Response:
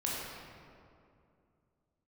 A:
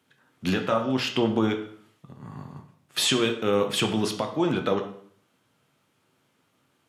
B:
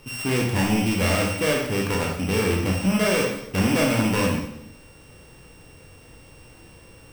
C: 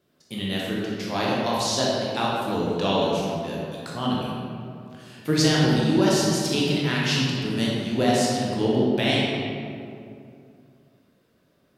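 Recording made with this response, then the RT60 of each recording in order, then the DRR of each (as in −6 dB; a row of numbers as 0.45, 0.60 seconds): C; 0.55, 0.80, 2.5 seconds; 4.0, −1.5, −5.5 decibels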